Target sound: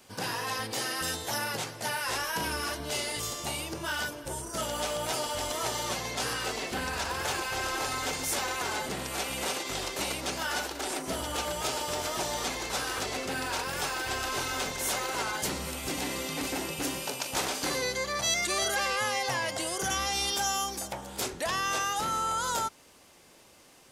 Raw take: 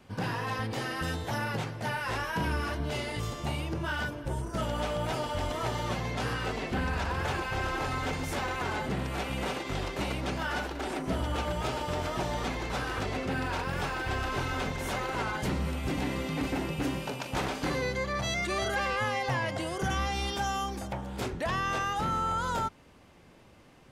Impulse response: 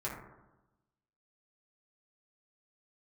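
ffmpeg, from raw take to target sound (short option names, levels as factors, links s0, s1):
-af "bass=f=250:g=-10,treble=f=4000:g=14"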